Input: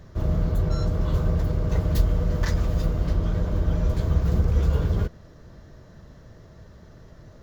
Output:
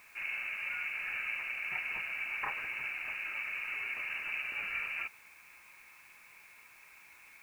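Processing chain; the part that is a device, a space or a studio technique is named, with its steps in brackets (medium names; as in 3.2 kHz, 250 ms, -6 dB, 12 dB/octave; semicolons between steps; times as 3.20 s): scrambled radio voice (band-pass 360–3000 Hz; frequency inversion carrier 2.8 kHz; white noise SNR 25 dB); trim -2 dB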